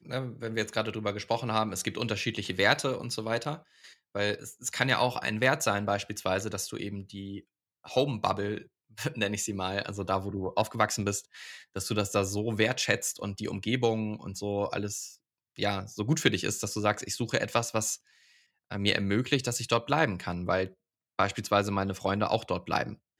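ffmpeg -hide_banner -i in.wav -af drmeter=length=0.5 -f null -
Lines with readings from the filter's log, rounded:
Channel 1: DR: 17.8
Overall DR: 17.8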